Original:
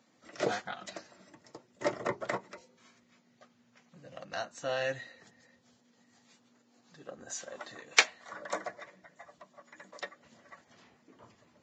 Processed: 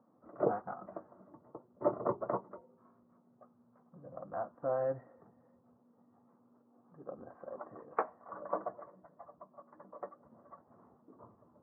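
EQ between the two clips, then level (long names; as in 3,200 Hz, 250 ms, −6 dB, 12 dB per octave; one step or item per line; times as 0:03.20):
elliptic low-pass filter 1,200 Hz, stop band 70 dB
+1.0 dB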